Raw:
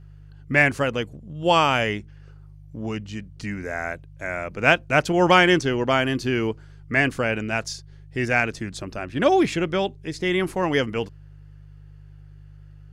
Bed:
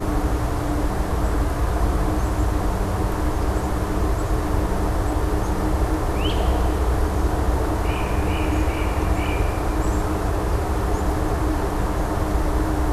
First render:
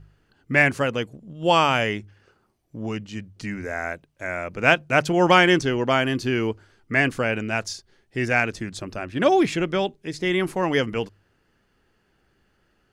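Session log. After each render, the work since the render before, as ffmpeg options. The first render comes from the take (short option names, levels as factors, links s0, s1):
-af "bandreject=f=50:t=h:w=4,bandreject=f=100:t=h:w=4,bandreject=f=150:t=h:w=4"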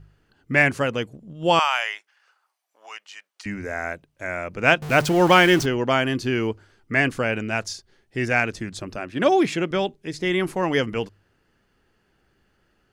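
-filter_complex "[0:a]asettb=1/sr,asplit=3[s0][s1][s2];[s0]atrim=end=1.594[s3];[s1]atrim=start=1.59:end=3.46,asetpts=PTS-STARTPTS,afade=t=in:d=0.004:c=qsin,afade=t=out:st=1.866:d=0.004:c=qsin,highpass=f=800:w=0.5412,highpass=f=800:w=1.3066[s4];[s2]atrim=start=3.456[s5];[s3][s4]acrossfade=d=0.004:c1=hsin:c2=qsin[s6];[s6][s5]acrossfade=d=0.004:c1=qsin:c2=hsin,asettb=1/sr,asplit=3[s7][s8][s9];[s7]atrim=end=4.824[s10];[s8]atrim=start=4.82:end=5.66,asetpts=PTS-STARTPTS,afade=t=in:d=0.004:c=qsin,afade=t=out:st=0.836:d=0.004:c=qsin,aeval=exprs='val(0)+0.5*0.0501*sgn(val(0))':c=same[s11];[s9]atrim=start=5.656[s12];[s10][s11]acrossfade=d=0.004:c1=hsin:c2=qsin[s13];[s13][s12]acrossfade=d=0.004:c1=qsin:c2=hsin,asettb=1/sr,asplit=3[s14][s15][s16];[s14]atrim=end=8.964[s17];[s15]atrim=start=8.96:end=9.71,asetpts=PTS-STARTPTS,afade=t=in:d=0.004:c=qsin,afade=t=out:st=0.746:d=0.004:c=qsin,highpass=130[s18];[s16]atrim=start=9.706[s19];[s17][s18]acrossfade=d=0.004:c1=hsin:c2=qsin[s20];[s20][s19]acrossfade=d=0.004:c1=qsin:c2=hsin"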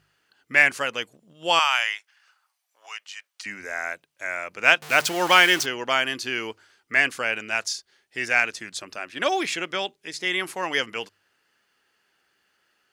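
-af "highpass=f=650:p=1,tiltshelf=f=1100:g=-4.5"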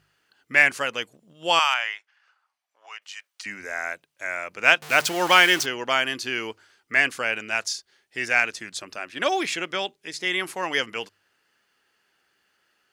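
-filter_complex "[0:a]asettb=1/sr,asplit=3[s0][s1][s2];[s0]atrim=end=1.744[s3];[s1]atrim=start=1.74:end=3.02,asetpts=PTS-STARTPTS,afade=t=in:d=0.004:c=qsin,afade=t=out:st=1.276:d=0.004:c=qsin,aemphasis=mode=reproduction:type=75kf[s4];[s2]atrim=start=3.016[s5];[s3][s4]acrossfade=d=0.004:c1=hsin:c2=qsin[s6];[s6][s5]acrossfade=d=0.004:c1=qsin:c2=hsin"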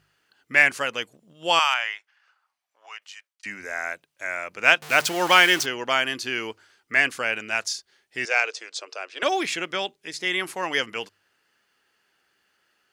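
-filter_complex "[0:a]asettb=1/sr,asplit=3[s0][s1][s2];[s0]atrim=end=8.254[s3];[s1]atrim=start=8.25:end=9.23,asetpts=PTS-STARTPTS,afade=t=in:d=0.004:c=qsin,afade=t=out:st=0.976:d=0.004:c=qsin,highpass=f=430:w=0.5412,highpass=f=430:w=1.3066,equalizer=f=460:t=q:w=4:g=8,equalizer=f=1800:t=q:w=4:g=-6,equalizer=f=4900:t=q:w=4:g=3,lowpass=f=7700:w=0.5412,lowpass=f=7700:w=1.3066[s4];[s2]atrim=start=9.226[s5];[s3][s4]acrossfade=d=0.004:c1=hsin:c2=qsin[s6];[s6][s5]acrossfade=d=0.004:c1=qsin:c2=hsin,asplit=2[s7][s8];[s7]atrim=end=3.43,asetpts=PTS-STARTPTS,afade=t=out:st=2.98:d=0.45[s9];[s8]atrim=start=3.43,asetpts=PTS-STARTPTS,afade=t=in:d=0.004:c=hsin[s10];[s9][s10]concat=n=2:v=0:a=1"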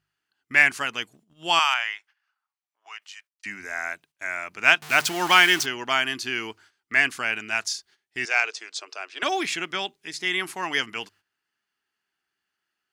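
-af "agate=range=0.224:threshold=0.00251:ratio=16:detection=peak,equalizer=f=520:t=o:w=0.33:g=-13.5"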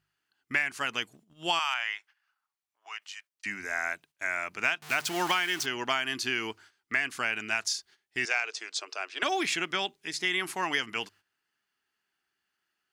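-af "acompressor=threshold=0.0631:ratio=8"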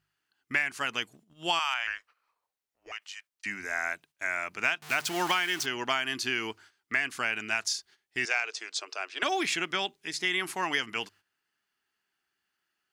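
-filter_complex "[0:a]asettb=1/sr,asplit=3[s0][s1][s2];[s0]atrim=end=1.874[s3];[s1]atrim=start=1.87:end=2.92,asetpts=PTS-STARTPTS,afade=t=in:d=0.004:c=qsin,afade=t=out:st=1.046:d=0.004:c=qsin,afreqshift=-350[s4];[s2]atrim=start=2.916[s5];[s3][s4]acrossfade=d=0.004:c1=hsin:c2=qsin[s6];[s6][s5]acrossfade=d=0.004:c1=qsin:c2=hsin"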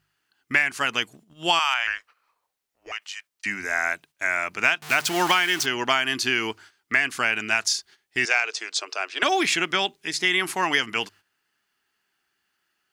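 -af "volume=2.24"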